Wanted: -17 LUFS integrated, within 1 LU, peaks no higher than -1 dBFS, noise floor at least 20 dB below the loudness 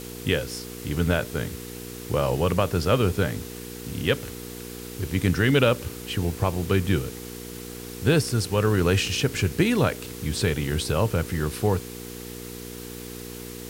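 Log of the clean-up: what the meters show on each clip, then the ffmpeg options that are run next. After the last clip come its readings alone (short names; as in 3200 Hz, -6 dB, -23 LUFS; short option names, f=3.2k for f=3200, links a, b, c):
hum 60 Hz; harmonics up to 480 Hz; hum level -38 dBFS; noise floor -38 dBFS; noise floor target -45 dBFS; loudness -25.0 LUFS; peak -8.0 dBFS; loudness target -17.0 LUFS
-> -af "bandreject=f=60:t=h:w=4,bandreject=f=120:t=h:w=4,bandreject=f=180:t=h:w=4,bandreject=f=240:t=h:w=4,bandreject=f=300:t=h:w=4,bandreject=f=360:t=h:w=4,bandreject=f=420:t=h:w=4,bandreject=f=480:t=h:w=4"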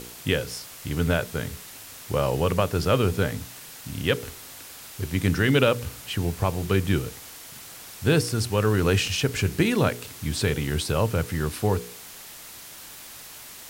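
hum none; noise floor -43 dBFS; noise floor target -45 dBFS
-> -af "afftdn=nr=6:nf=-43"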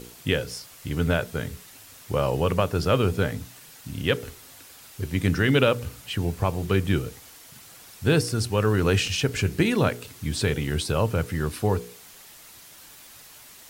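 noise floor -48 dBFS; loudness -25.0 LUFS; peak -7.5 dBFS; loudness target -17.0 LUFS
-> -af "volume=8dB,alimiter=limit=-1dB:level=0:latency=1"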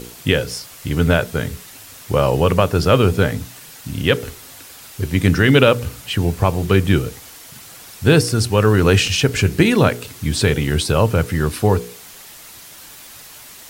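loudness -17.0 LUFS; peak -1.0 dBFS; noise floor -40 dBFS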